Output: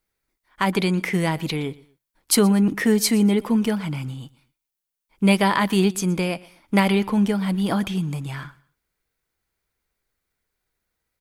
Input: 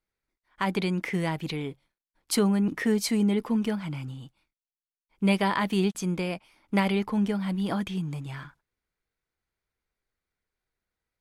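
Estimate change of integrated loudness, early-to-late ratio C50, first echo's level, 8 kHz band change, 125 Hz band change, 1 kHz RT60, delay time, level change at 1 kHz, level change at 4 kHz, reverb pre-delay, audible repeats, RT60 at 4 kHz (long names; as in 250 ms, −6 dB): +6.5 dB, no reverb audible, −22.0 dB, +10.0 dB, +6.0 dB, no reverb audible, 120 ms, +6.0 dB, +7.0 dB, no reverb audible, 2, no reverb audible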